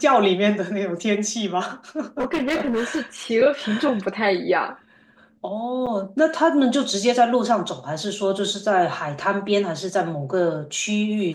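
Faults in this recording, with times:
2.2–3 clipped -18.5 dBFS
5.86–5.87 gap 6.6 ms

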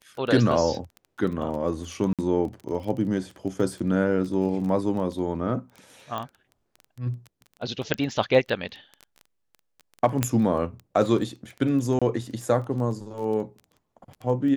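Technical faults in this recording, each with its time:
crackle 13/s -32 dBFS
2.13–2.19 gap 57 ms
6.18 pop -19 dBFS
7.94 pop -10 dBFS
10.23 pop -7 dBFS
11.99–12.02 gap 26 ms

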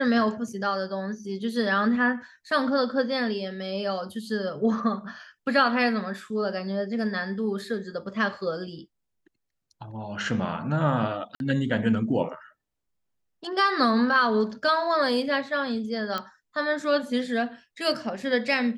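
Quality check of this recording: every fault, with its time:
11.35–11.4 gap 51 ms
16.18 pop -16 dBFS

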